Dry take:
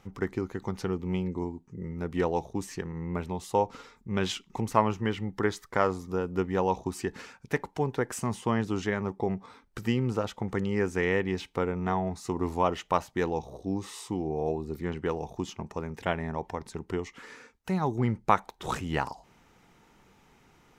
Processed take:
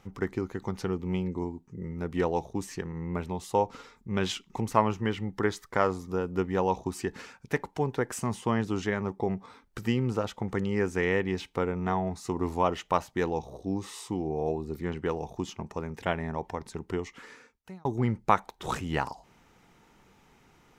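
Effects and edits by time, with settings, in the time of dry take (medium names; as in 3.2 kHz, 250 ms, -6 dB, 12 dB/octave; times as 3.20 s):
17.16–17.85 s: fade out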